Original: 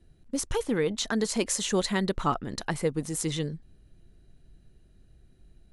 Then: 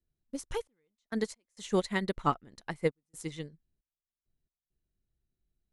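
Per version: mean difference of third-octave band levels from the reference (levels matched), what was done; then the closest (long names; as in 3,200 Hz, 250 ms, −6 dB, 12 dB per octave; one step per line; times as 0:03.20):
10.0 dB: dynamic equaliser 2,100 Hz, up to +6 dB, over −52 dBFS, Q 5.1
gate pattern "xxx..x.xxxxxx." 67 BPM −24 dB
expander for the loud parts 2.5 to 1, over −39 dBFS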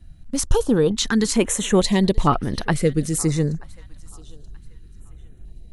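3.0 dB: low-shelf EQ 130 Hz +8.5 dB
on a send: feedback echo with a high-pass in the loop 931 ms, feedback 28%, high-pass 460 Hz, level −22.5 dB
on the sum: notch on a step sequencer 2.2 Hz 410–7,200 Hz
level +8 dB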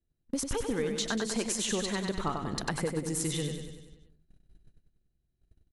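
6.5 dB: noise gate −49 dBFS, range −28 dB
downward compressor 6 to 1, threshold −34 dBFS, peak gain reduction 13 dB
repeating echo 96 ms, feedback 56%, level −6 dB
level +4.5 dB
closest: second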